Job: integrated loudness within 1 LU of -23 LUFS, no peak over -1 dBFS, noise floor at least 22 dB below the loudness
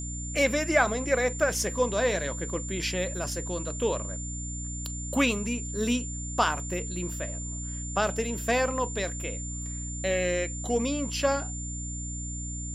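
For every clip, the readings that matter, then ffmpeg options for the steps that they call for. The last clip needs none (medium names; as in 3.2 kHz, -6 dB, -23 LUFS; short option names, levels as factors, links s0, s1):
hum 60 Hz; highest harmonic 300 Hz; hum level -34 dBFS; steady tone 7.2 kHz; tone level -37 dBFS; loudness -29.0 LUFS; peak level -9.5 dBFS; loudness target -23.0 LUFS
-> -af "bandreject=f=60:t=h:w=6,bandreject=f=120:t=h:w=6,bandreject=f=180:t=h:w=6,bandreject=f=240:t=h:w=6,bandreject=f=300:t=h:w=6"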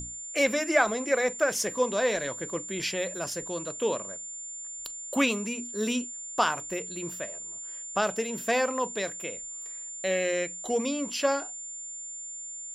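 hum not found; steady tone 7.2 kHz; tone level -37 dBFS
-> -af "bandreject=f=7200:w=30"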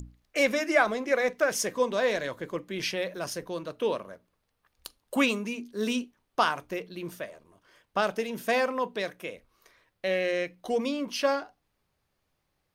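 steady tone not found; loudness -29.0 LUFS; peak level -9.5 dBFS; loudness target -23.0 LUFS
-> -af "volume=2"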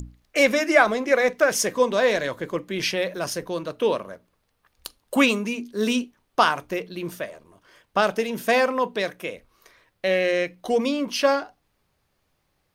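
loudness -23.0 LUFS; peak level -3.5 dBFS; noise floor -72 dBFS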